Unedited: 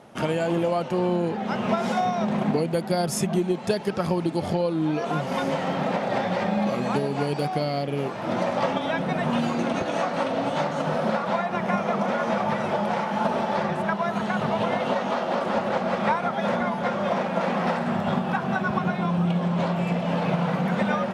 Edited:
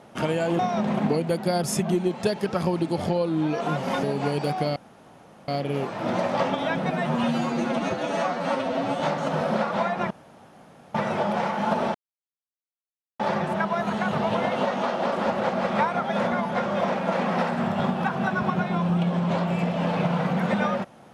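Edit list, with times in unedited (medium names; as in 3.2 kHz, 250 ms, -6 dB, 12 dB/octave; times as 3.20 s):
0.59–2.03 s: delete
5.47–6.98 s: delete
7.71 s: insert room tone 0.72 s
9.14–10.53 s: stretch 1.5×
11.64–12.48 s: room tone
13.48 s: insert silence 1.25 s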